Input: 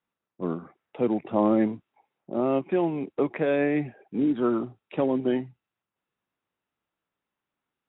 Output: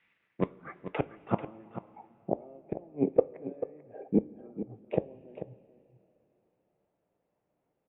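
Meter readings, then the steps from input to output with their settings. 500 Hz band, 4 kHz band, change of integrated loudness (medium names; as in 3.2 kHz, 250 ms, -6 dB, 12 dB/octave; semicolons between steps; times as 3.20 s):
-6.5 dB, no reading, -7.5 dB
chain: inverted gate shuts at -21 dBFS, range -38 dB; resonant high shelf 1.7 kHz +9 dB, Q 1.5; low-pass sweep 2.1 kHz -> 630 Hz, 0.12–2.62 s; delay 440 ms -12 dB; two-slope reverb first 0.22 s, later 3.4 s, from -18 dB, DRR 12.5 dB; trim +7 dB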